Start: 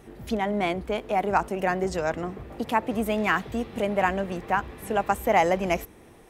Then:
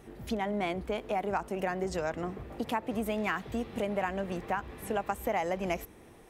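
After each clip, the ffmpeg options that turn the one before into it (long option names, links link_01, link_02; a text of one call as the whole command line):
ffmpeg -i in.wav -af "acompressor=threshold=-25dB:ratio=4,volume=-3dB" out.wav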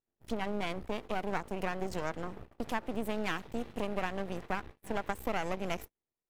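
ffmpeg -i in.wav -af "aeval=exprs='max(val(0),0)':channel_layout=same,agate=range=-39dB:threshold=-43dB:ratio=16:detection=peak" out.wav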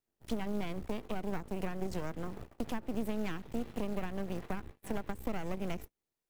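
ffmpeg -i in.wav -filter_complex "[0:a]acrusher=bits=5:mode=log:mix=0:aa=0.000001,acrossover=split=350[link_01][link_02];[link_02]acompressor=threshold=-44dB:ratio=4[link_03];[link_01][link_03]amix=inputs=2:normalize=0,volume=2dB" out.wav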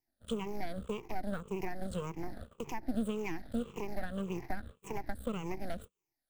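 ffmpeg -i in.wav -af "afftfilt=real='re*pow(10,17/40*sin(2*PI*(0.74*log(max(b,1)*sr/1024/100)/log(2)-(-1.8)*(pts-256)/sr)))':imag='im*pow(10,17/40*sin(2*PI*(0.74*log(max(b,1)*sr/1024/100)/log(2)-(-1.8)*(pts-256)/sr)))':win_size=1024:overlap=0.75,volume=-3.5dB" out.wav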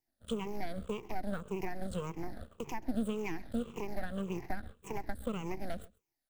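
ffmpeg -i in.wav -af "aecho=1:1:132:0.075" out.wav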